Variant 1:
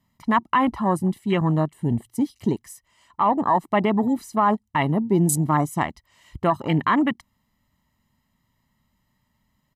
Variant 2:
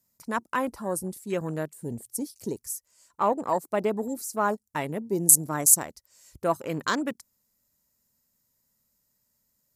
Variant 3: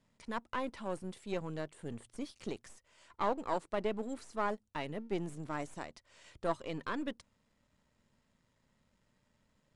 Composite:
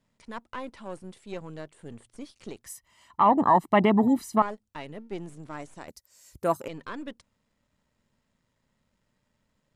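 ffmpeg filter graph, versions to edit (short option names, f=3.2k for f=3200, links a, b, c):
-filter_complex "[2:a]asplit=3[a][b][c];[a]atrim=end=2.662[d];[0:a]atrim=start=2.658:end=4.422[e];[b]atrim=start=4.418:end=5.882[f];[1:a]atrim=start=5.878:end=6.682[g];[c]atrim=start=6.678[h];[d][e]acrossfade=d=0.004:c1=hsin:c2=hsin[i];[i][f]acrossfade=d=0.004:c1=hsin:c2=hsin[j];[j][g]acrossfade=d=0.004:c1=hsin:c2=hsin[k];[k][h]acrossfade=d=0.004:c1=hsin:c2=hsin"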